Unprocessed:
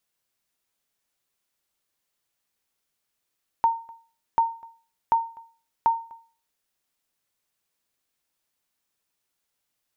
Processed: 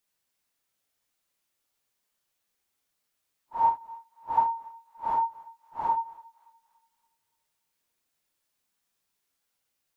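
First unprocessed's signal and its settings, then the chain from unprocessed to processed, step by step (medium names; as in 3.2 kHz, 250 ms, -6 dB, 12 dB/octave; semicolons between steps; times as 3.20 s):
sonar ping 916 Hz, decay 0.39 s, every 0.74 s, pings 4, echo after 0.25 s, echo -26 dB -12.5 dBFS
phase randomisation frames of 200 ms; thinning echo 286 ms, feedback 60%, high-pass 1.1 kHz, level -21.5 dB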